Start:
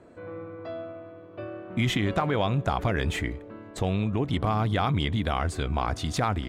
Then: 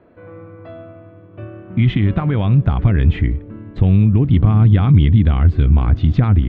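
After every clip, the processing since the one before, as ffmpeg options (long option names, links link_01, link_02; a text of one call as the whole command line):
ffmpeg -i in.wav -af "lowpass=frequency=3300:width=0.5412,lowpass=frequency=3300:width=1.3066,asubboost=boost=8:cutoff=240,volume=1.5dB" out.wav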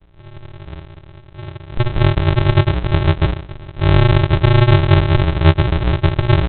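ffmpeg -i in.wav -af "alimiter=limit=-7.5dB:level=0:latency=1:release=107,flanger=delay=19:depth=3.1:speed=0.45,aresample=8000,acrusher=samples=33:mix=1:aa=0.000001,aresample=44100,volume=5dB" out.wav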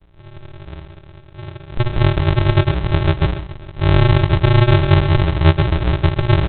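ffmpeg -i in.wav -af "aecho=1:1:131:0.224,volume=-1dB" out.wav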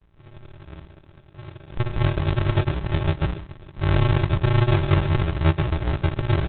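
ffmpeg -i in.wav -af "volume=-6.5dB" -ar 48000 -c:a libopus -b:a 8k out.opus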